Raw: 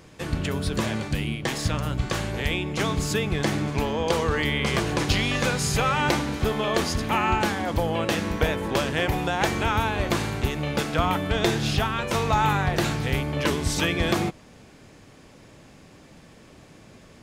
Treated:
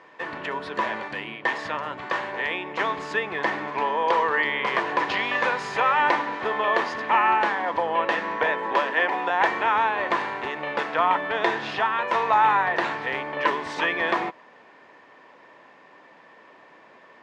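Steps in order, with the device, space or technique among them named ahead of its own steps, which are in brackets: 8.73–9.3 steep high-pass 170 Hz 96 dB/oct; tin-can telephone (BPF 510–2300 Hz; small resonant body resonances 990/1800 Hz, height 11 dB, ringing for 30 ms); gain +2.5 dB

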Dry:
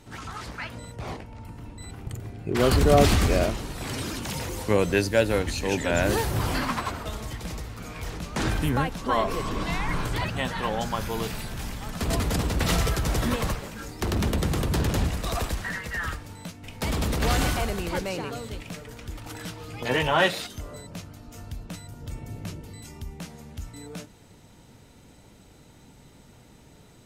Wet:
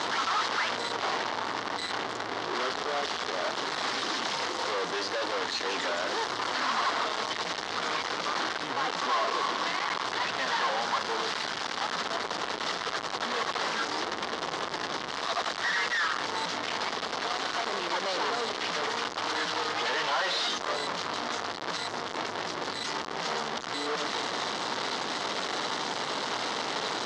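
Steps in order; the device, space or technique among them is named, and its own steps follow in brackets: home computer beeper (infinite clipping; speaker cabinet 520–5100 Hz, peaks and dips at 570 Hz -3 dB, 1100 Hz +3 dB, 2500 Hz -7 dB); gain +2 dB

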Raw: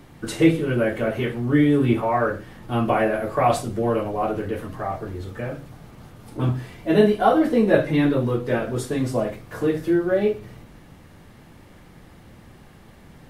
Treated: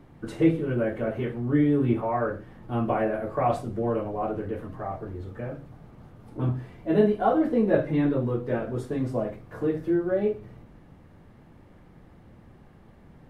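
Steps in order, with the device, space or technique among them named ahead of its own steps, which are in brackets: through cloth (high shelf 2300 Hz -14 dB); gain -4 dB

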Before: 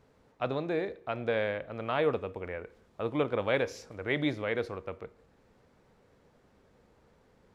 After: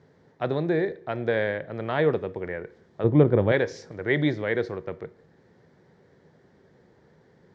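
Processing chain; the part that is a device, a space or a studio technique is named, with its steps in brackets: 3.04–3.52 tilt -3.5 dB/oct; car door speaker (speaker cabinet 84–6500 Hz, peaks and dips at 110 Hz +4 dB, 160 Hz +9 dB, 370 Hz +7 dB, 1200 Hz -5 dB, 1800 Hz +7 dB, 2600 Hz -8 dB); gain +3.5 dB

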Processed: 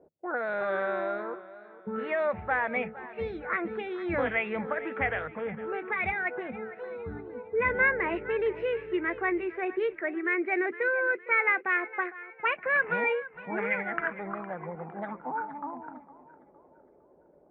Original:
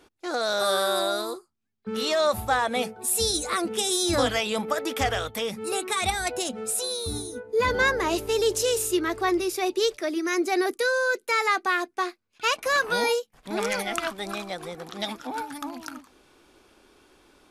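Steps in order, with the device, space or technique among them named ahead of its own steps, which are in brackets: 6.12–6.52 HPF 150 Hz 24 dB/oct; envelope filter bass rig (envelope low-pass 590–2300 Hz up, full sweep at -22.5 dBFS; speaker cabinet 68–2100 Hz, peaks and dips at 110 Hz -5 dB, 160 Hz +9 dB, 280 Hz -4 dB, 740 Hz -3 dB, 1200 Hz -7 dB); warbling echo 0.459 s, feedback 39%, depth 56 cents, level -17 dB; gain -4.5 dB

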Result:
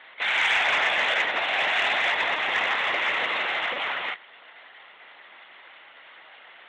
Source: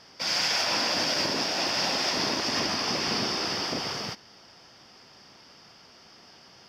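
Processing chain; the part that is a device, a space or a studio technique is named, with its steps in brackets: talking toy (LPC vocoder at 8 kHz; HPF 630 Hz 12 dB/oct; bell 2000 Hz +9 dB 0.52 oct; soft clip -20 dBFS, distortion -22 dB); gain +6.5 dB

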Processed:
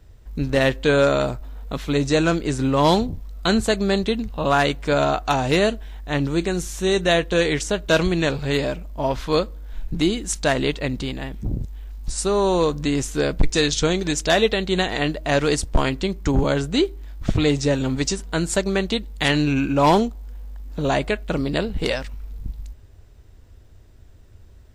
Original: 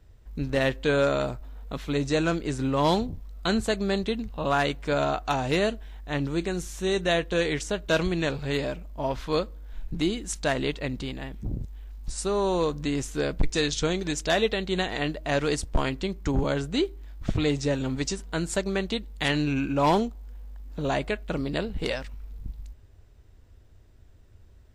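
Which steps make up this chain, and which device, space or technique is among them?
exciter from parts (in parallel at -13.5 dB: HPF 3100 Hz + soft clip -25 dBFS, distortion -17 dB); on the sum: gain +6 dB

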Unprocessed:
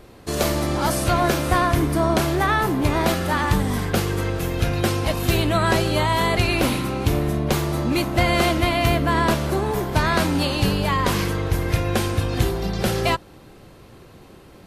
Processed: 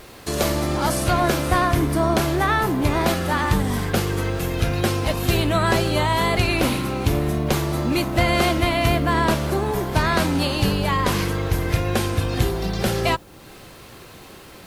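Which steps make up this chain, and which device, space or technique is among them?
noise-reduction cassette on a plain deck (mismatched tape noise reduction encoder only; wow and flutter 23 cents; white noise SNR 36 dB)

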